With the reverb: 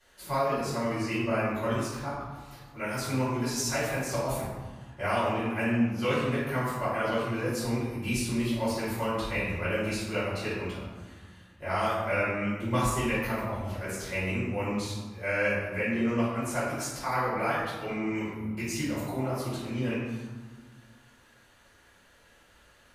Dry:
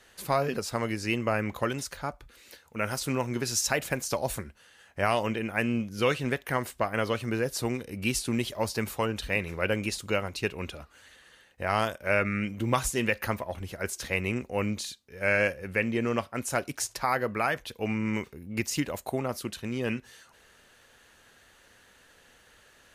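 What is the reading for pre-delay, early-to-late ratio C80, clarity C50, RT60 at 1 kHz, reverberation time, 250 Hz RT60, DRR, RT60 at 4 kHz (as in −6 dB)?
3 ms, 2.0 dB, −1.0 dB, 1.7 s, 1.5 s, 2.1 s, −12.5 dB, 0.75 s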